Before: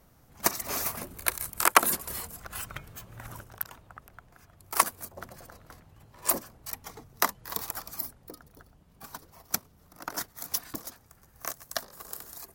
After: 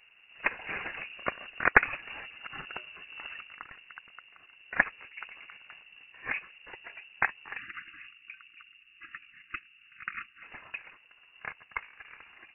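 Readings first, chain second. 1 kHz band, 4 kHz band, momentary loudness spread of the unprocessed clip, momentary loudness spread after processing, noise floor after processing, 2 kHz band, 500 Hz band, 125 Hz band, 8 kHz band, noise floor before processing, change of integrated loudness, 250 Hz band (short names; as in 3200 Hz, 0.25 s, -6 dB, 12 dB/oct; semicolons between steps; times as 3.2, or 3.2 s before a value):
-5.5 dB, -9.5 dB, 19 LU, 20 LU, -60 dBFS, +5.5 dB, -3.5 dB, -5.5 dB, under -40 dB, -60 dBFS, -3.0 dB, -5.5 dB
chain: inverted band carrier 2800 Hz; spectral delete 7.58–10.43, 350–1100 Hz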